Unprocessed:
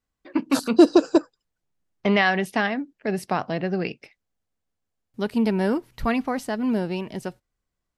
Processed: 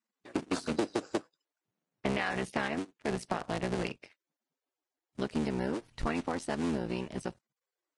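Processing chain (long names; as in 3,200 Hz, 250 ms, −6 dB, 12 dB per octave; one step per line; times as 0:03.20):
sub-harmonics by changed cycles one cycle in 3, muted
downward compressor 8 to 1, threshold −24 dBFS, peak gain reduction 15 dB
level −3.5 dB
Ogg Vorbis 32 kbit/s 22,050 Hz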